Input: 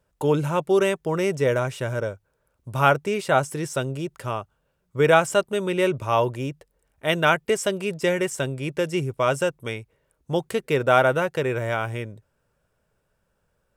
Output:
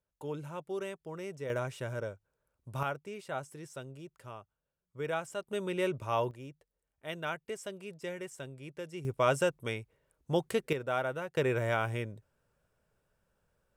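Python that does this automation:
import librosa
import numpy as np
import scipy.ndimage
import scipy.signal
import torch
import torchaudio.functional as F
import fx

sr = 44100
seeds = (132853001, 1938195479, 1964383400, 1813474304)

y = fx.gain(x, sr, db=fx.steps((0.0, -18.0), (1.5, -10.5), (2.83, -18.0), (5.47, -10.0), (6.31, -17.5), (9.05, -5.5), (10.73, -15.0), (11.37, -5.0)))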